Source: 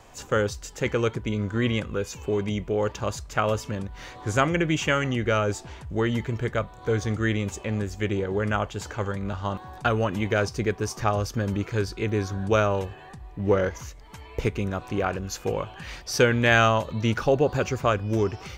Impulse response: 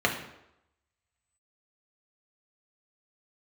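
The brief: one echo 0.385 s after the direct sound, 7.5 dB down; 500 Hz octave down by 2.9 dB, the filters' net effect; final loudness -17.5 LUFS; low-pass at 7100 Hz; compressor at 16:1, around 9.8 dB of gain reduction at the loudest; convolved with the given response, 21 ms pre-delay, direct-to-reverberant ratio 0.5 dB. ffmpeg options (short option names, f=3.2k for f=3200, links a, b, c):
-filter_complex "[0:a]lowpass=7.1k,equalizer=f=500:t=o:g=-3.5,acompressor=threshold=-25dB:ratio=16,aecho=1:1:385:0.422,asplit=2[a][b];[1:a]atrim=start_sample=2205,adelay=21[c];[b][c]afir=irnorm=-1:irlink=0,volume=-14dB[d];[a][d]amix=inputs=2:normalize=0,volume=10.5dB"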